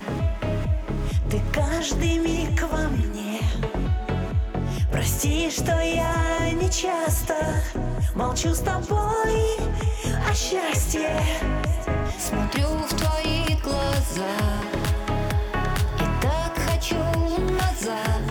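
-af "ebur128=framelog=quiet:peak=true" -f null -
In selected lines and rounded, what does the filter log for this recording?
Integrated loudness:
  I:         -24.5 LUFS
  Threshold: -34.5 LUFS
Loudness range:
  LRA:         1.3 LU
  Threshold: -44.4 LUFS
  LRA low:   -25.0 LUFS
  LRA high:  -23.7 LUFS
True peak:
  Peak:      -12.8 dBFS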